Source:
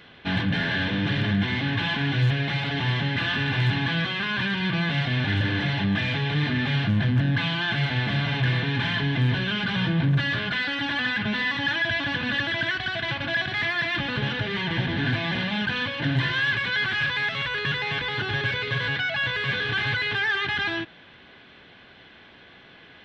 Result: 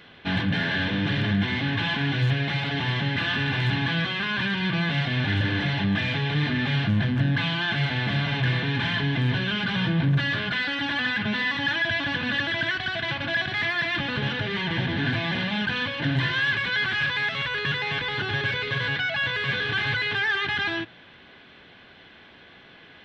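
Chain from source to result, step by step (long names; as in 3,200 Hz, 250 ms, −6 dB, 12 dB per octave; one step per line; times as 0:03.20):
mains-hum notches 60/120 Hz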